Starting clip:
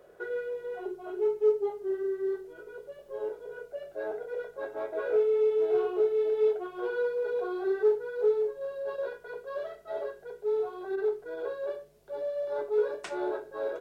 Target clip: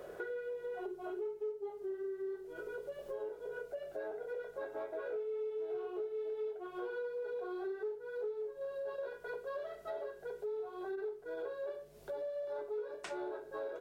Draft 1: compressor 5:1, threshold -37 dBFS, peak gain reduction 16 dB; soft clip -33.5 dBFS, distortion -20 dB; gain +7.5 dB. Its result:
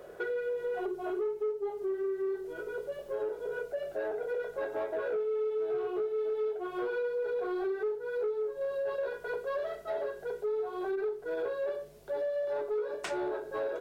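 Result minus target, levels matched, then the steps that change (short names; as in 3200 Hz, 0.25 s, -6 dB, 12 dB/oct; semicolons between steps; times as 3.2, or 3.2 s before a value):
compressor: peak gain reduction -9 dB
change: compressor 5:1, threshold -48 dBFS, peak gain reduction 24.5 dB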